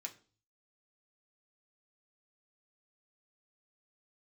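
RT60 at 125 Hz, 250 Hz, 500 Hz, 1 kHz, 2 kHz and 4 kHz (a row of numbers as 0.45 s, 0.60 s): 0.75 s, 0.50 s, 0.45 s, 0.35 s, 0.35 s, 0.40 s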